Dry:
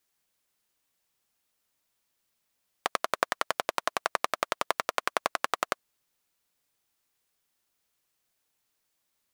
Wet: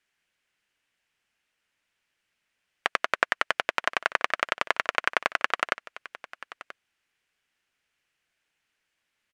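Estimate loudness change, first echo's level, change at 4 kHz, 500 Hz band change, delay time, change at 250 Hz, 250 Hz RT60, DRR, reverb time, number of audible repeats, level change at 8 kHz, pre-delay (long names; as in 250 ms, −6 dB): +4.0 dB, −17.5 dB, +3.5 dB, 0.0 dB, 982 ms, 0.0 dB, no reverb audible, no reverb audible, no reverb audible, 1, −5.0 dB, no reverb audible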